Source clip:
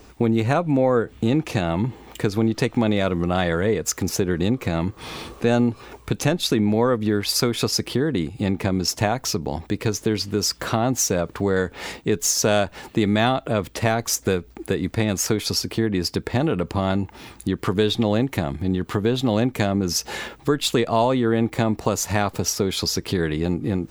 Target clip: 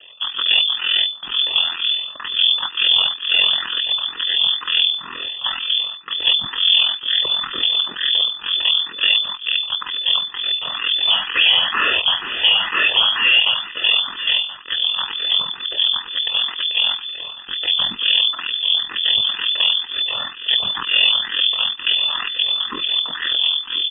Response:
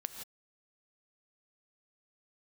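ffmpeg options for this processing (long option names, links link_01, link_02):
-filter_complex "[0:a]highpass=frequency=120:width=0.5412,highpass=frequency=120:width=1.3066,bandreject=frequency=60:width_type=h:width=6,bandreject=frequency=120:width_type=h:width=6,bandreject=frequency=180:width_type=h:width=6,bandreject=frequency=240:width_type=h:width=6,bandreject=frequency=300:width_type=h:width=6,bandreject=frequency=360:width_type=h:width=6,bandreject=frequency=420:width_type=h:width=6,bandreject=frequency=480:width_type=h:width=6,aecho=1:1:1.3:0.98,asoftclip=type=tanh:threshold=-16dB,aeval=exprs='val(0)*sin(2*PI*21*n/s)':channel_layout=same,aeval=exprs='max(val(0),0)':channel_layout=same,asettb=1/sr,asplit=3[link_01][link_02][link_03];[link_01]atrim=end=11.074[link_04];[link_02]atrim=start=11.07:end=13.54,asetpts=PTS-STARTPTS,afade=type=in:duration=0.004:curve=qsin,afade=type=out:start_time=2.466:duration=0.004:curve=qsin,asplit=2[link_05][link_06];[link_06]highpass=frequency=720:poles=1,volume=38dB,asoftclip=type=tanh:threshold=-16dB[link_07];[link_05][link_07]amix=inputs=2:normalize=0,lowpass=frequency=1900:poles=1,volume=-6dB[link_08];[link_03]atrim=start=13.536[link_09];[link_04][link_08]acrossfade=duration=0.004:curve1=hsin:curve2=qsin[link_10];[link_10][link_09]acrossfade=duration=0.004:curve1=qsin:curve2=hsin,asuperstop=centerf=1300:order=4:qfactor=2.5,aecho=1:1:1027:0.2,lowpass=frequency=3000:width_type=q:width=0.5098,lowpass=frequency=3000:width_type=q:width=0.6013,lowpass=frequency=3000:width_type=q:width=0.9,lowpass=frequency=3000:width_type=q:width=2.563,afreqshift=-3500,alimiter=level_in=16.5dB:limit=-1dB:release=50:level=0:latency=1,asplit=2[link_11][link_12];[link_12]afreqshift=2.1[link_13];[link_11][link_13]amix=inputs=2:normalize=1,volume=-3dB"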